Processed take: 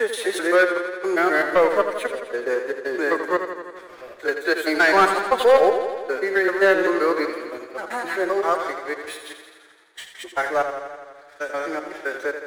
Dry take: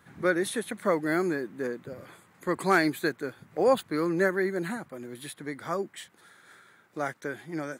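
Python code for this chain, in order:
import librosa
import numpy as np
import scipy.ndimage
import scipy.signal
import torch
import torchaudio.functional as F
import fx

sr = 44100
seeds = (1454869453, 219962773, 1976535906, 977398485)

y = fx.block_reorder(x, sr, ms=81.0, group=8)
y = scipy.signal.sosfilt(scipy.signal.butter(4, 420.0, 'highpass', fs=sr, output='sos'), y)
y = fx.high_shelf(y, sr, hz=5900.0, db=-11.5)
y = fx.leveller(y, sr, passes=2)
y = fx.stretch_vocoder(y, sr, factor=1.6)
y = fx.echo_warbled(y, sr, ms=84, feedback_pct=70, rate_hz=2.8, cents=56, wet_db=-8.5)
y = y * 10.0 ** (4.0 / 20.0)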